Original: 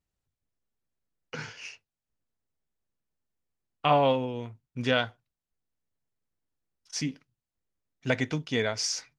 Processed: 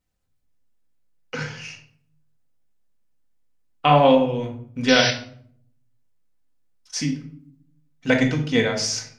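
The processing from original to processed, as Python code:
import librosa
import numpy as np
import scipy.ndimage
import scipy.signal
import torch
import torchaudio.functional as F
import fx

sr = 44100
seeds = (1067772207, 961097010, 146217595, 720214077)

p1 = fx.level_steps(x, sr, step_db=13)
p2 = x + (p1 * 10.0 ** (2.0 / 20.0))
p3 = fx.spec_paint(p2, sr, seeds[0], shape='noise', start_s=4.88, length_s=0.23, low_hz=1500.0, high_hz=6000.0, level_db=-24.0)
y = fx.room_shoebox(p3, sr, seeds[1], volume_m3=890.0, walls='furnished', distance_m=2.0)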